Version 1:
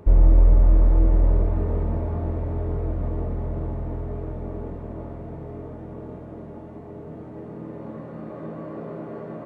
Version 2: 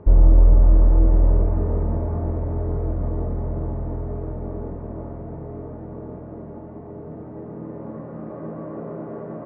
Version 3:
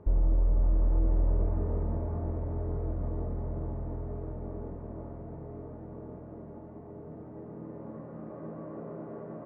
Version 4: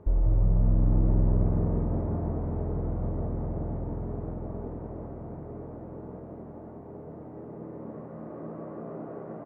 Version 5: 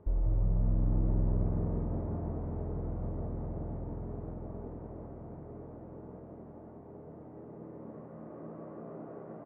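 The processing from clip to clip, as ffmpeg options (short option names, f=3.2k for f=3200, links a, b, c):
-af "lowpass=1.5k,volume=2dB"
-af "alimiter=limit=-10dB:level=0:latency=1:release=56,volume=-8.5dB"
-filter_complex "[0:a]asplit=9[a][b][c][d][e][f][g][h][i];[b]adelay=179,afreqshift=64,volume=-7dB[j];[c]adelay=358,afreqshift=128,volume=-11.6dB[k];[d]adelay=537,afreqshift=192,volume=-16.2dB[l];[e]adelay=716,afreqshift=256,volume=-20.7dB[m];[f]adelay=895,afreqshift=320,volume=-25.3dB[n];[g]adelay=1074,afreqshift=384,volume=-29.9dB[o];[h]adelay=1253,afreqshift=448,volume=-34.5dB[p];[i]adelay=1432,afreqshift=512,volume=-39.1dB[q];[a][j][k][l][m][n][o][p][q]amix=inputs=9:normalize=0,volume=1dB"
-af "aresample=8000,aresample=44100,volume=-6dB"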